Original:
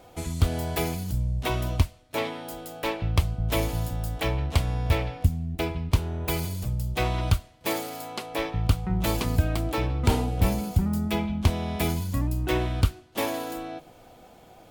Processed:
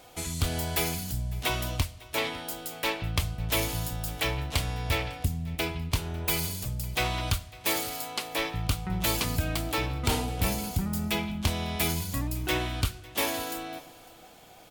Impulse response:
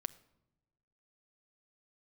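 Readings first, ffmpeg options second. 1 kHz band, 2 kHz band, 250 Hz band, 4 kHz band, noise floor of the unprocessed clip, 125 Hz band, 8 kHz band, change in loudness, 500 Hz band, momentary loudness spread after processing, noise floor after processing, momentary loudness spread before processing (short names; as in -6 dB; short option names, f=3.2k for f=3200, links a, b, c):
-1.5 dB, +2.5 dB, -4.5 dB, +4.0 dB, -52 dBFS, -5.5 dB, +5.0 dB, -2.0 dB, -4.0 dB, 5 LU, -51 dBFS, 6 LU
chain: -filter_complex "[0:a]tiltshelf=f=1.3k:g=-5.5,asoftclip=type=tanh:threshold=-17dB,aecho=1:1:552:0.0794,asplit=2[a][b];[1:a]atrim=start_sample=2205,asetrate=41454,aresample=44100[c];[b][c]afir=irnorm=-1:irlink=0,volume=5.5dB[d];[a][d]amix=inputs=2:normalize=0,volume=-7.5dB"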